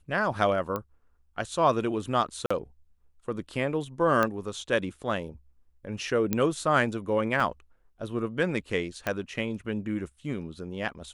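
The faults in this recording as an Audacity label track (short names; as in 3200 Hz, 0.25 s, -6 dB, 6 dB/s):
0.760000	0.760000	pop -18 dBFS
2.460000	2.500000	gap 45 ms
4.230000	4.230000	pop -12 dBFS
6.330000	6.330000	pop -11 dBFS
7.400000	7.400000	gap 4.1 ms
9.070000	9.070000	pop -14 dBFS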